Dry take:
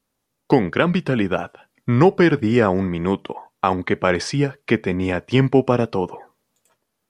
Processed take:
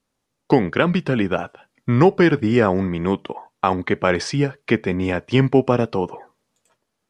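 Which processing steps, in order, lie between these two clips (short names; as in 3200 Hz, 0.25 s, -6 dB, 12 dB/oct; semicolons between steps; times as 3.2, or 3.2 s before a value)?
LPF 9500 Hz 12 dB/oct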